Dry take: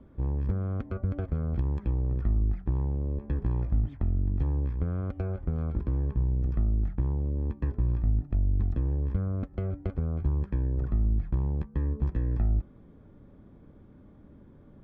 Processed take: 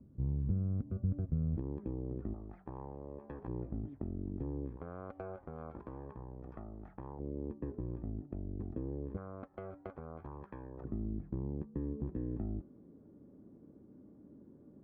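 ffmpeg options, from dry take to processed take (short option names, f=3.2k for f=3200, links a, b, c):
-af "asetnsamples=n=441:p=0,asendcmd='1.57 bandpass f 350;2.34 bandpass f 790;3.48 bandpass f 360;4.77 bandpass f 850;7.19 bandpass f 390;9.17 bandpass f 930;10.84 bandpass f 310',bandpass=f=150:t=q:w=1.3:csg=0"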